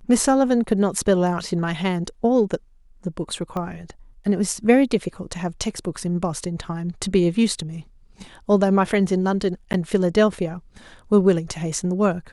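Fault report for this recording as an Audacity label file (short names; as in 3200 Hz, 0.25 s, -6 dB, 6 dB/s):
3.570000	3.570000	pop -17 dBFS
9.730000	9.740000	gap 9.8 ms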